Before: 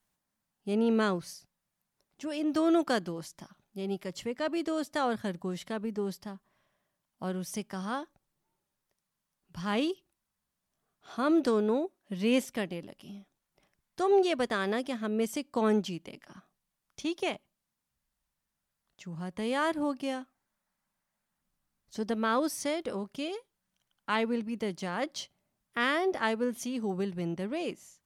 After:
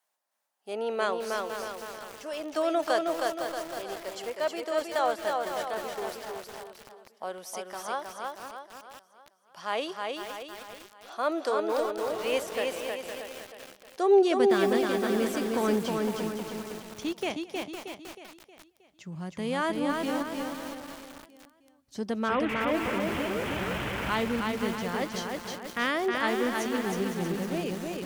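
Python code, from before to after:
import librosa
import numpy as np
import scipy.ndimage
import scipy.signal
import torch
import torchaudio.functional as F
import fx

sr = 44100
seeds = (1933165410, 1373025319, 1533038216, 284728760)

y = fx.delta_mod(x, sr, bps=16000, step_db=-27.5, at=(22.28, 24.1))
y = y + 10.0 ** (-21.0 / 20.0) * np.pad(y, (int(219 * sr / 1000.0), 0))[:len(y)]
y = fx.filter_sweep_highpass(y, sr, from_hz=610.0, to_hz=64.0, start_s=13.85, end_s=14.98, q=1.6)
y = fx.echo_feedback(y, sr, ms=315, feedback_pct=46, wet_db=-3.5)
y = fx.echo_crushed(y, sr, ms=509, feedback_pct=55, bits=6, wet_db=-7.5)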